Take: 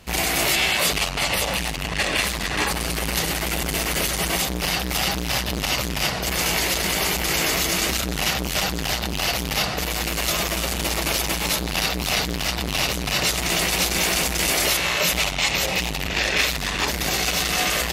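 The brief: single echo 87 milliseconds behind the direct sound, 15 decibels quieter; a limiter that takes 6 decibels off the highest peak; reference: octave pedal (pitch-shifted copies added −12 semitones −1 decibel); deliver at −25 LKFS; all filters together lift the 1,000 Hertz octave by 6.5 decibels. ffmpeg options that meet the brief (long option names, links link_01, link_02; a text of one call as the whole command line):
ffmpeg -i in.wav -filter_complex "[0:a]equalizer=frequency=1000:width_type=o:gain=8.5,alimiter=limit=-11dB:level=0:latency=1,aecho=1:1:87:0.178,asplit=2[link_01][link_02];[link_02]asetrate=22050,aresample=44100,atempo=2,volume=-1dB[link_03];[link_01][link_03]amix=inputs=2:normalize=0,volume=-5.5dB" out.wav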